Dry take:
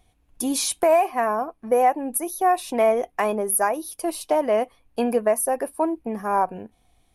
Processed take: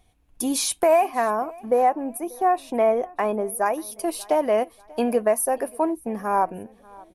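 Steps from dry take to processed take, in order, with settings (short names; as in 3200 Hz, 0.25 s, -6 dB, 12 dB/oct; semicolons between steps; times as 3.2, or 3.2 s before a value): 1.62–3.66 high shelf 2500 Hz -10.5 dB; feedback echo 0.588 s, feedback 40%, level -24 dB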